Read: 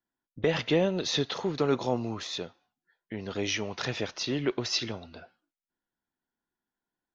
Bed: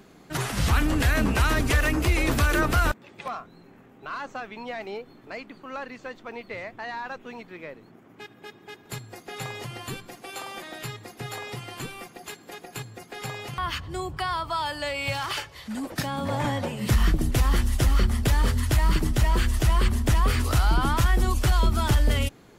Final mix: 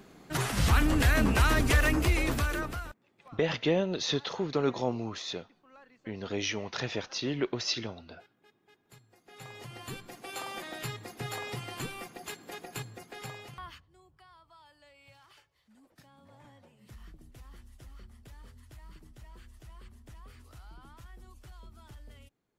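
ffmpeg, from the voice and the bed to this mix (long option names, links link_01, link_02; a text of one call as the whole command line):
ffmpeg -i stem1.wav -i stem2.wav -filter_complex "[0:a]adelay=2950,volume=-2dB[link_01];[1:a]volume=16.5dB,afade=type=out:start_time=1.92:duration=0.95:silence=0.11885,afade=type=in:start_time=9.19:duration=1.25:silence=0.11885,afade=type=out:start_time=12.67:duration=1.19:silence=0.0421697[link_02];[link_01][link_02]amix=inputs=2:normalize=0" out.wav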